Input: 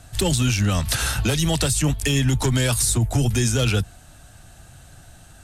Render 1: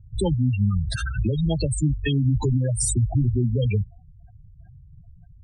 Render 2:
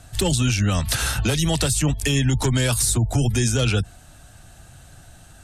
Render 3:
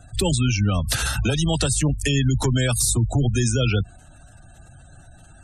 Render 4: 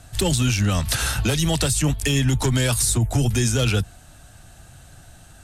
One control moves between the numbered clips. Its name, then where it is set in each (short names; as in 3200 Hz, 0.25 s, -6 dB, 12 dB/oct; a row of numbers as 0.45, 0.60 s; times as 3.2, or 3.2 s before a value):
spectral gate, under each frame's peak: -10, -40, -25, -60 dB